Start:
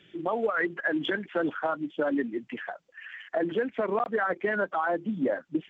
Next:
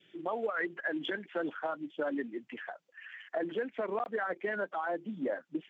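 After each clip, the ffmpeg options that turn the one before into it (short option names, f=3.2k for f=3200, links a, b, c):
-af "highpass=f=260:p=1,adynamicequalizer=threshold=0.00562:dfrequency=1200:dqfactor=1.9:tfrequency=1200:tqfactor=1.9:attack=5:release=100:ratio=0.375:range=2:mode=cutabove:tftype=bell,volume=-5dB"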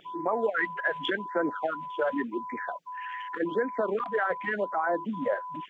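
-af "aeval=exprs='val(0)+0.00794*sin(2*PI*1000*n/s)':c=same,afftfilt=real='re*(1-between(b*sr/1024,230*pow(3500/230,0.5+0.5*sin(2*PI*0.88*pts/sr))/1.41,230*pow(3500/230,0.5+0.5*sin(2*PI*0.88*pts/sr))*1.41))':imag='im*(1-between(b*sr/1024,230*pow(3500/230,0.5+0.5*sin(2*PI*0.88*pts/sr))/1.41,230*pow(3500/230,0.5+0.5*sin(2*PI*0.88*pts/sr))*1.41))':win_size=1024:overlap=0.75,volume=6.5dB"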